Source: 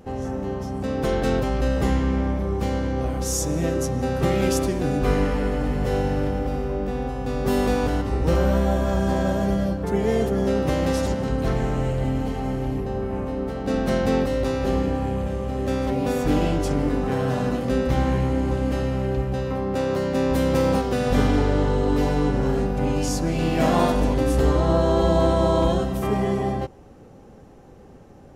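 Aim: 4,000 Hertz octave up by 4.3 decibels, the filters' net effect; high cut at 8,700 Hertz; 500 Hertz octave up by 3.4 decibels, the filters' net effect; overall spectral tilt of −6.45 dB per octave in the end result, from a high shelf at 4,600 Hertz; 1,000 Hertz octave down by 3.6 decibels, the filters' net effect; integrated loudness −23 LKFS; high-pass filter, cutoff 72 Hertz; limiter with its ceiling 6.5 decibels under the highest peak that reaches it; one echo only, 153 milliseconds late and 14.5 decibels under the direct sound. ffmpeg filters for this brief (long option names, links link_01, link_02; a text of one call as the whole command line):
ffmpeg -i in.wav -af "highpass=72,lowpass=8700,equalizer=frequency=500:width_type=o:gain=6,equalizer=frequency=1000:width_type=o:gain=-8.5,equalizer=frequency=4000:width_type=o:gain=8,highshelf=frequency=4600:gain=-3.5,alimiter=limit=-12dB:level=0:latency=1,aecho=1:1:153:0.188,volume=-0.5dB" out.wav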